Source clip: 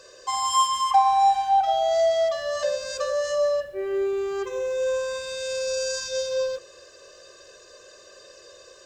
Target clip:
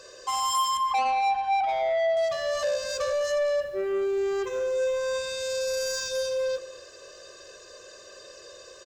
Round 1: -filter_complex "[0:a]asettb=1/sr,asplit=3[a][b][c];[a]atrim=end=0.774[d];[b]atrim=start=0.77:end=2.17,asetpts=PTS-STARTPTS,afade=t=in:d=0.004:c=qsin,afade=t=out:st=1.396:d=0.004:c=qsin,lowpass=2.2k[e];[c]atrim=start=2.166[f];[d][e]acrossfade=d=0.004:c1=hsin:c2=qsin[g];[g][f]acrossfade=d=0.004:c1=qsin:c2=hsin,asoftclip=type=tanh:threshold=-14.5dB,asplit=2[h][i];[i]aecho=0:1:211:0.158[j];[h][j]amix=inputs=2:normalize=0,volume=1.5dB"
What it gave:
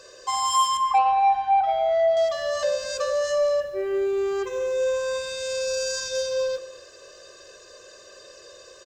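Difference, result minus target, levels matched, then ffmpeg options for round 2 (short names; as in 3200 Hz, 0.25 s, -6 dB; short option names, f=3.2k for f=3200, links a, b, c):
soft clip: distortion -9 dB
-filter_complex "[0:a]asettb=1/sr,asplit=3[a][b][c];[a]atrim=end=0.774[d];[b]atrim=start=0.77:end=2.17,asetpts=PTS-STARTPTS,afade=t=in:d=0.004:c=qsin,afade=t=out:st=1.396:d=0.004:c=qsin,lowpass=2.2k[e];[c]atrim=start=2.166[f];[d][e]acrossfade=d=0.004:c1=hsin:c2=qsin[g];[g][f]acrossfade=d=0.004:c1=qsin:c2=hsin,asoftclip=type=tanh:threshold=-23.5dB,asplit=2[h][i];[i]aecho=0:1:211:0.158[j];[h][j]amix=inputs=2:normalize=0,volume=1.5dB"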